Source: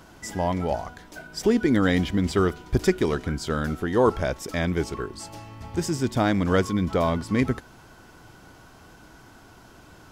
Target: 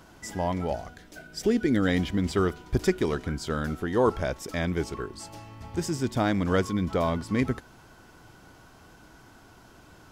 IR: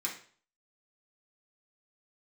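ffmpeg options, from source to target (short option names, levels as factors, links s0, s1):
-filter_complex "[0:a]asettb=1/sr,asplit=3[s0][s1][s2];[s0]atrim=end=0.724[s3];[s1]atrim=start=0.72:end=1.88,asetpts=PTS-STARTPTS,afade=t=in:d=0.004:c=qsin,afade=t=out:st=1.156:d=0.004:c=qsin,equalizer=f=980:t=o:w=0.5:g=-10[s4];[s2]atrim=start=1.876[s5];[s3][s4]acrossfade=d=0.004:c1=hsin:c2=qsin[s6];[s6][s5]acrossfade=d=0.004:c1=qsin:c2=hsin,volume=0.708"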